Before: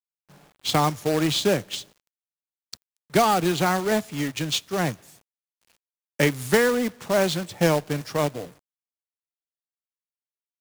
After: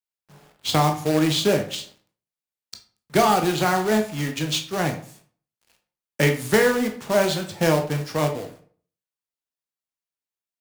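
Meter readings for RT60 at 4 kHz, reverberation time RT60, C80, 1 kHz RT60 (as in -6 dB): 0.30 s, 0.45 s, 15.5 dB, 0.45 s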